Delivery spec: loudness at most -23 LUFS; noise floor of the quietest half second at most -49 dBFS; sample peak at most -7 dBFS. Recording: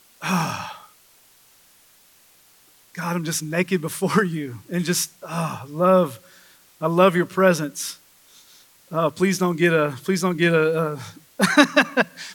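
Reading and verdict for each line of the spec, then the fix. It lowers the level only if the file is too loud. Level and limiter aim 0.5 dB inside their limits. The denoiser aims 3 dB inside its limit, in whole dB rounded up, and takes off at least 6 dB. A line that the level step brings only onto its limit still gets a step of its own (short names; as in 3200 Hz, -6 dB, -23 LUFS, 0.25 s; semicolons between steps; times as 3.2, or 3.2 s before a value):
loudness -21.0 LUFS: fail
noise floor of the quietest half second -55 dBFS: OK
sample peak -2.5 dBFS: fail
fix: gain -2.5 dB; limiter -7.5 dBFS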